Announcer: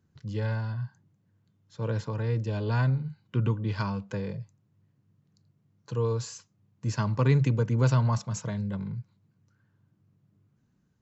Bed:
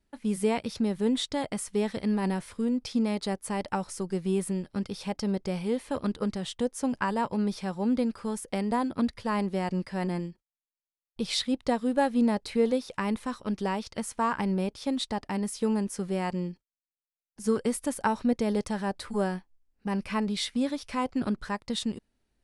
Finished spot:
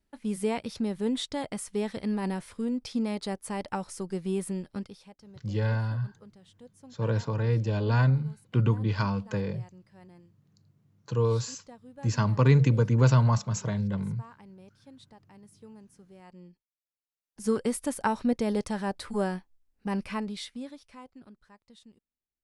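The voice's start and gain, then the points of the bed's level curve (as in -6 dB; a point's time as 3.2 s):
5.20 s, +2.5 dB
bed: 4.75 s -2.5 dB
5.17 s -22.5 dB
16.17 s -22.5 dB
17.34 s -0.5 dB
19.99 s -0.5 dB
21.34 s -24 dB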